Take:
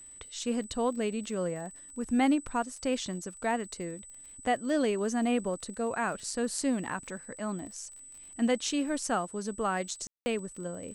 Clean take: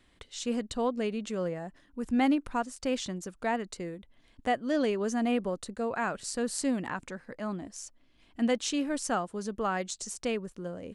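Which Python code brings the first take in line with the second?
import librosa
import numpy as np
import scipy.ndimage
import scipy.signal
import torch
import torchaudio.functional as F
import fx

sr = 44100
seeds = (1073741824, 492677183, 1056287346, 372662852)

y = fx.fix_declick_ar(x, sr, threshold=6.5)
y = fx.notch(y, sr, hz=8000.0, q=30.0)
y = fx.fix_ambience(y, sr, seeds[0], print_start_s=7.88, print_end_s=8.38, start_s=10.07, end_s=10.26)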